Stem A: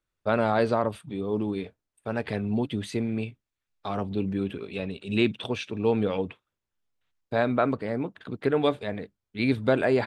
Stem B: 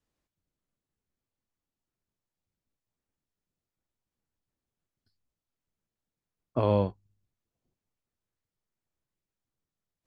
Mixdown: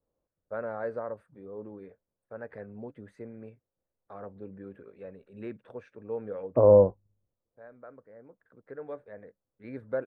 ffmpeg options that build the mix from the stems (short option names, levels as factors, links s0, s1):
-filter_complex "[0:a]highshelf=f=2300:t=q:w=3:g=-11,adelay=250,volume=0.126[s0];[1:a]lowpass=f=1200:w=0.5412,lowpass=f=1200:w=1.3066,volume=0.944,asplit=2[s1][s2];[s2]apad=whole_len=454683[s3];[s0][s3]sidechaincompress=threshold=0.00355:ratio=3:attack=11:release=1420[s4];[s4][s1]amix=inputs=2:normalize=0,equalizer=f=520:t=o:w=0.49:g=12.5"